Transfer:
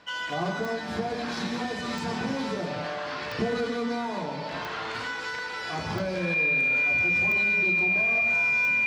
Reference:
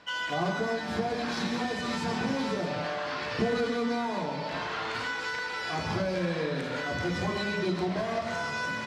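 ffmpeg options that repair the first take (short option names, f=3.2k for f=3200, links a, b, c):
-af "adeclick=t=4,bandreject=f=2.4k:w=30,asetnsamples=n=441:p=0,asendcmd='6.34 volume volume 5dB',volume=0dB"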